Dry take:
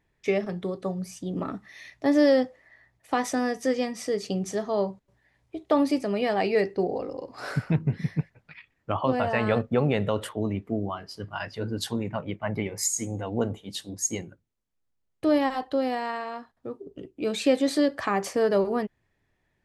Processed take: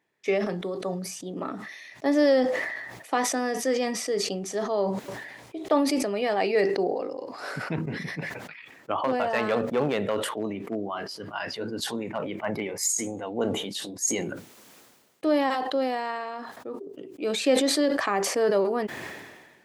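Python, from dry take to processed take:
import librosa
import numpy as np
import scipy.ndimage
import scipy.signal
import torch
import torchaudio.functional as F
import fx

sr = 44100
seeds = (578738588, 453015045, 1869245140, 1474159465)

y = fx.clip_hard(x, sr, threshold_db=-17.5, at=(8.97, 12.9))
y = scipy.signal.sosfilt(scipy.signal.butter(2, 270.0, 'highpass', fs=sr, output='sos'), y)
y = fx.sustainer(y, sr, db_per_s=40.0)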